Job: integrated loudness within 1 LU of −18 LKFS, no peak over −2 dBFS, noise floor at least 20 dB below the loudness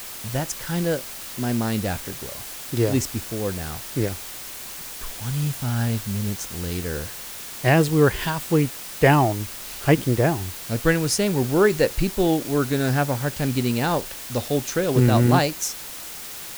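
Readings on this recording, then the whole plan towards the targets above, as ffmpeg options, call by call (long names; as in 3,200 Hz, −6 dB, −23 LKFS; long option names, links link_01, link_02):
background noise floor −36 dBFS; target noise floor −44 dBFS; integrated loudness −23.5 LKFS; sample peak −3.5 dBFS; target loudness −18.0 LKFS
→ -af "afftdn=noise_reduction=8:noise_floor=-36"
-af "volume=5.5dB,alimiter=limit=-2dB:level=0:latency=1"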